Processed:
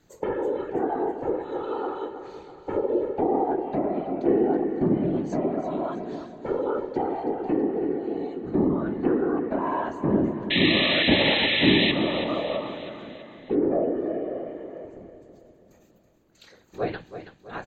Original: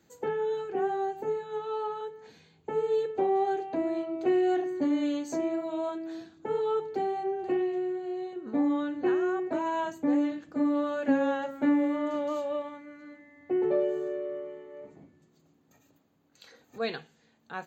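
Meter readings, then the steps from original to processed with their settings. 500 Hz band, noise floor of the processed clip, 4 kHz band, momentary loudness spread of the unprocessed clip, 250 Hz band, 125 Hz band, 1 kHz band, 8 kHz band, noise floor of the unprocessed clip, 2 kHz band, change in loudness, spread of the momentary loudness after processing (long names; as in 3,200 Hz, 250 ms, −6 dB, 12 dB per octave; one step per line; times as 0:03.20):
+3.0 dB, −57 dBFS, +21.5 dB, 13 LU, +4.0 dB, +19.5 dB, +2.5 dB, can't be measured, −66 dBFS, +12.0 dB, +5.0 dB, 17 LU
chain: random phases in short frames
low-shelf EQ 180 Hz +6.5 dB
treble cut that deepens with the level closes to 1,300 Hz, closed at −23 dBFS
sound drawn into the spectrogram noise, 0:10.50–0:11.92, 1,700–4,100 Hz −26 dBFS
on a send: repeating echo 327 ms, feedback 51%, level −11 dB
on the sum: level +2 dB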